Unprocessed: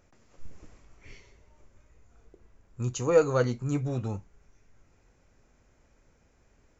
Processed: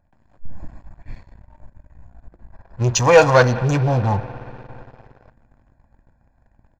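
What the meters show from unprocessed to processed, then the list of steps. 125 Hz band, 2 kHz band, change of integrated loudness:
+12.5 dB, +19.0 dB, +11.5 dB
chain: local Wiener filter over 15 samples; comb 1.2 ms, depth 93%; spring tank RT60 3.5 s, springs 58 ms, chirp 80 ms, DRR 17.5 dB; waveshaping leveller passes 2; in parallel at +0.5 dB: peak limiter -20.5 dBFS, peak gain reduction 7 dB; on the sum: level rider gain up to 5 dB; time-frequency box 2.54–5.30 s, 350–6400 Hz +10 dB; attacks held to a fixed rise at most 460 dB/s; trim -7 dB

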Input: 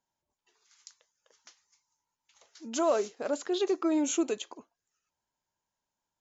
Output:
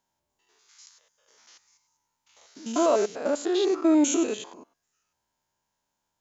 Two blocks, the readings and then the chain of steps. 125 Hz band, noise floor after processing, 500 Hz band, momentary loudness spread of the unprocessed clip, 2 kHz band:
no reading, -81 dBFS, +5.0 dB, 10 LU, +4.0 dB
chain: spectrogram pixelated in time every 100 ms; trim +8 dB

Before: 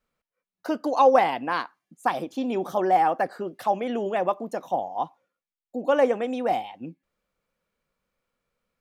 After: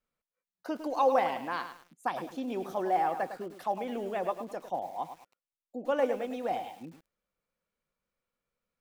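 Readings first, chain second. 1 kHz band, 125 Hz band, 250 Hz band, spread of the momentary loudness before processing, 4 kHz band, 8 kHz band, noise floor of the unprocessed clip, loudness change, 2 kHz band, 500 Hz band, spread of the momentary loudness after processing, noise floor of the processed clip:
-7.5 dB, -7.5 dB, -7.5 dB, 14 LU, -7.5 dB, no reading, under -85 dBFS, -7.5 dB, -7.5 dB, -7.5 dB, 15 LU, under -85 dBFS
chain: bit-crushed delay 105 ms, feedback 35%, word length 7-bit, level -9.5 dB; trim -8 dB

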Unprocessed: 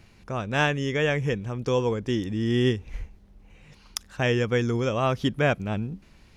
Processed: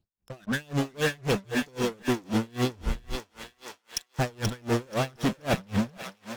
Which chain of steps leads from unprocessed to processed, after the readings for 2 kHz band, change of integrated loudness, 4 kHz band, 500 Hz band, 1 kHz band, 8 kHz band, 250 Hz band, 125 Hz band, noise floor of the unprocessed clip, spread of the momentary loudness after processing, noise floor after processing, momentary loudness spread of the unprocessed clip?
-4.5 dB, -4.0 dB, -2.0 dB, -5.5 dB, -3.0 dB, +3.5 dB, -2.0 dB, -5.0 dB, -55 dBFS, 14 LU, -74 dBFS, 13 LU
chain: spectral noise reduction 22 dB; dynamic bell 5.5 kHz, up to +5 dB, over -45 dBFS, Q 0.74; reverse; compression 12:1, threshold -34 dBFS, peak gain reduction 17.5 dB; reverse; phase shifter stages 12, 1.5 Hz, lowest notch 740–4400 Hz; in parallel at -9 dB: fuzz box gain 52 dB, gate -56 dBFS; on the sum: thinning echo 481 ms, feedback 70%, high-pass 670 Hz, level -5.5 dB; logarithmic tremolo 3.8 Hz, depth 32 dB

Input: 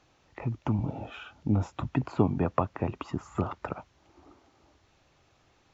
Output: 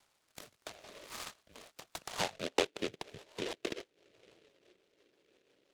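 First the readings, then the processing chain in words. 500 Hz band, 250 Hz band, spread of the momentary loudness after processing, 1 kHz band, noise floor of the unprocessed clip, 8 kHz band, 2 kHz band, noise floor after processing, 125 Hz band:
-5.0 dB, -15.5 dB, 20 LU, -8.5 dB, -66 dBFS, no reading, +1.5 dB, -77 dBFS, -25.5 dB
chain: bass shelf 330 Hz -8.5 dB; mistuned SSB -240 Hz 320–2400 Hz; band-pass sweep 1.4 kHz -> 410 Hz, 2.01–2.70 s; rotary cabinet horn 0.75 Hz, later 6 Hz, at 2.04 s; delay time shaken by noise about 2.5 kHz, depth 0.19 ms; trim +7.5 dB

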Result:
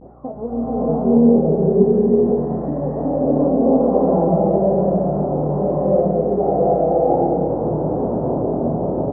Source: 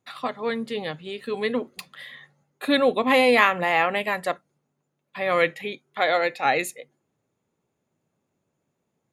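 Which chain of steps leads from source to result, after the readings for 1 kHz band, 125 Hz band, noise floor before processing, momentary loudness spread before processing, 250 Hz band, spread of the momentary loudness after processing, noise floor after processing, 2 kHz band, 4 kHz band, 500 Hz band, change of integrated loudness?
+2.5 dB, +22.0 dB, -78 dBFS, 17 LU, +14.0 dB, 7 LU, -26 dBFS, under -30 dB, under -40 dB, +10.0 dB, +5.5 dB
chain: zero-crossing glitches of -10 dBFS; steep low-pass 700 Hz 36 dB/octave; bass shelf 270 Hz +10 dB; level rider gain up to 9 dB; peak limiter -11.5 dBFS, peak gain reduction 9.5 dB; compression, threshold -24 dBFS, peak gain reduction 9 dB; vibrato 0.45 Hz 56 cents; doubling 26 ms -5.5 dB; mains buzz 60 Hz, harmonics 7, -48 dBFS -4 dB/octave; swelling reverb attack 730 ms, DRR -11 dB

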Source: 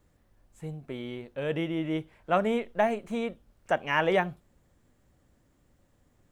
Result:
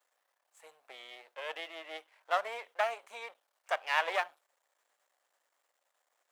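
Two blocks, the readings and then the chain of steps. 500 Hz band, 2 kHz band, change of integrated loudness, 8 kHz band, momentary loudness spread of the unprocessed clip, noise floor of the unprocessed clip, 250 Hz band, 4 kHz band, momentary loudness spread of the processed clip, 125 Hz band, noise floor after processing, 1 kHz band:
-10.0 dB, -3.0 dB, -5.5 dB, no reading, 13 LU, -68 dBFS, -31.0 dB, -1.0 dB, 18 LU, under -40 dB, -81 dBFS, -4.0 dB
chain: partial rectifier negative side -12 dB; high-pass 660 Hz 24 dB/octave

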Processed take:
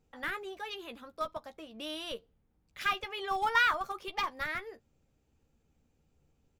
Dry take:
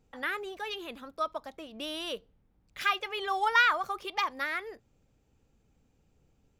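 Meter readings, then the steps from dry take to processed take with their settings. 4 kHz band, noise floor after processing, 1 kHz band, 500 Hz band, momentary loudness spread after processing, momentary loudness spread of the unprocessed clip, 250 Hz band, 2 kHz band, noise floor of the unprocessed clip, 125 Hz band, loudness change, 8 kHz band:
-3.0 dB, -75 dBFS, -3.0 dB, -3.0 dB, 18 LU, 18 LU, -2.5 dB, -2.5 dB, -70 dBFS, no reading, -3.0 dB, -2.5 dB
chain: in parallel at -9 dB: Schmitt trigger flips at -25 dBFS; on the sum: doubling 13 ms -9 dB; trim -4 dB

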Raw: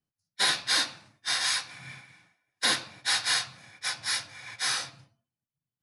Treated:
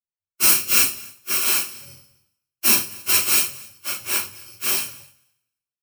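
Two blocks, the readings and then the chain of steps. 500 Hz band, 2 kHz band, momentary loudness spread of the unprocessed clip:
+7.0 dB, +2.5 dB, 16 LU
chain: bit-reversed sample order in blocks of 64 samples; on a send: thinning echo 264 ms, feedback 17%, level -18 dB; on the sum: two-slope reverb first 0.33 s, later 2 s, from -27 dB, DRR -6 dB; three bands expanded up and down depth 70%; trim +1 dB

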